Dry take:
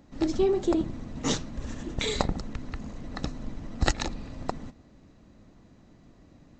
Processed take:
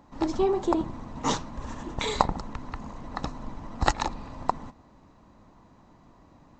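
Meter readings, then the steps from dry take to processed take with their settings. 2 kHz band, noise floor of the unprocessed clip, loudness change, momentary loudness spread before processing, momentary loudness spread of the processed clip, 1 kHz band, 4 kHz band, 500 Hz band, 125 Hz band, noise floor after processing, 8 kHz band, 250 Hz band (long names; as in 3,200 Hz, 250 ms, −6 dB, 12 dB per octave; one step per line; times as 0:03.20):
+0.5 dB, −56 dBFS, +0.5 dB, 15 LU, 14 LU, +8.5 dB, −1.5 dB, −0.5 dB, −2.0 dB, −57 dBFS, −2.0 dB, −1.0 dB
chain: parametric band 970 Hz +14.5 dB 0.78 octaves
level −2 dB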